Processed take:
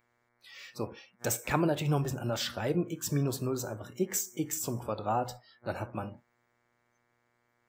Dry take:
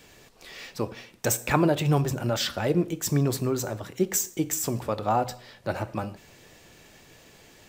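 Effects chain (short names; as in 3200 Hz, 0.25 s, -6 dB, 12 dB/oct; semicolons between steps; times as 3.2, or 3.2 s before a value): buzz 120 Hz, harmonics 19, -44 dBFS -1 dB/oct; spectral noise reduction 25 dB; gain -6 dB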